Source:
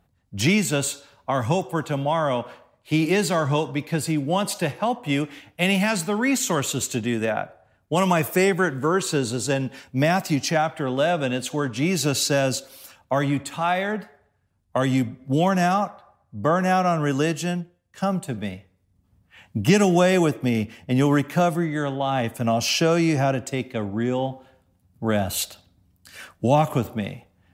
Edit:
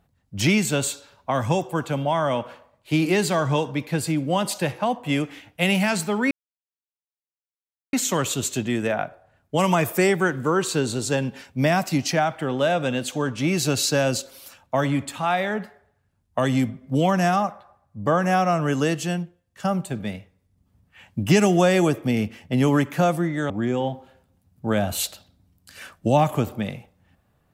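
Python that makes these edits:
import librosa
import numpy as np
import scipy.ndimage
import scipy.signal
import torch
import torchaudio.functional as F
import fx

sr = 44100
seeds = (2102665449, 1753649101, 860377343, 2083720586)

y = fx.edit(x, sr, fx.insert_silence(at_s=6.31, length_s=1.62),
    fx.cut(start_s=21.88, length_s=2.0), tone=tone)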